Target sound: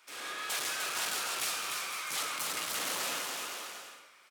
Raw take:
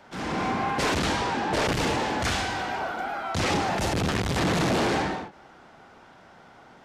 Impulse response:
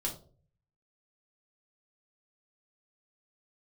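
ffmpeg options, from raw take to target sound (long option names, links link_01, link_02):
-filter_complex "[0:a]highshelf=frequency=2100:gain=-8.5,asetrate=70119,aresample=44100,aderivative,aecho=1:1:300|510|657|759.9|831.9:0.631|0.398|0.251|0.158|0.1,asplit=2[link_01][link_02];[1:a]atrim=start_sample=2205,adelay=130[link_03];[link_02][link_03]afir=irnorm=-1:irlink=0,volume=-15.5dB[link_04];[link_01][link_04]amix=inputs=2:normalize=0,volume=3dB"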